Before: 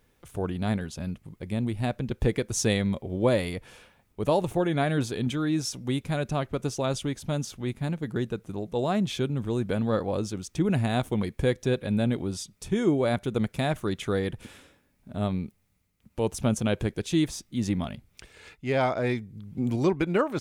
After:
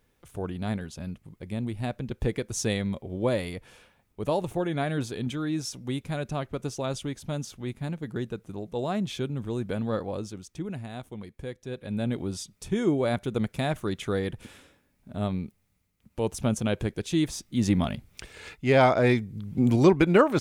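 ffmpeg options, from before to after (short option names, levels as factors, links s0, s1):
-af "volume=5.62,afade=t=out:st=9.93:d=0.9:silence=0.334965,afade=t=in:st=11.66:d=0.59:silence=0.266073,afade=t=in:st=17.19:d=0.74:silence=0.473151"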